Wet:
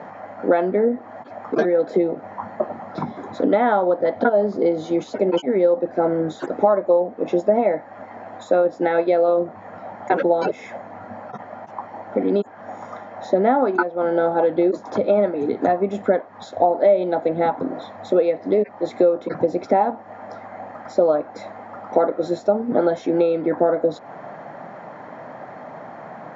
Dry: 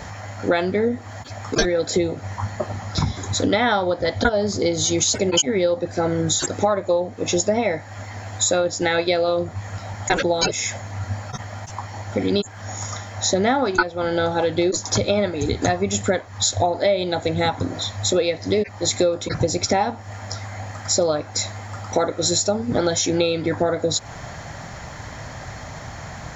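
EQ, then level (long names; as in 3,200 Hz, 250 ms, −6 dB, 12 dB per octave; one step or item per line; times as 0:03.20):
high-pass filter 200 Hz 24 dB per octave
low-pass filter 1,200 Hz 12 dB per octave
parametric band 630 Hz +3 dB
+1.5 dB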